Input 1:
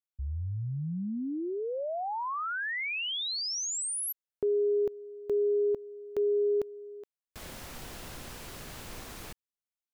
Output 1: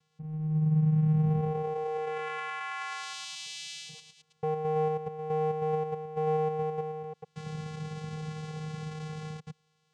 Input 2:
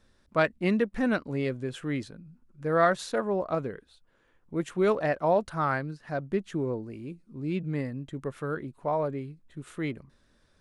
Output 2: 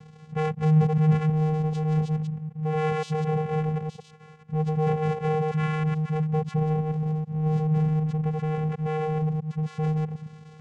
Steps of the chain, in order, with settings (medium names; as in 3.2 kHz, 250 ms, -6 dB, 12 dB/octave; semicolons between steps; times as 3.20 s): chunks repeated in reverse 108 ms, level -3 dB; power-law waveshaper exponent 0.5; vocoder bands 4, square 155 Hz; trim -3.5 dB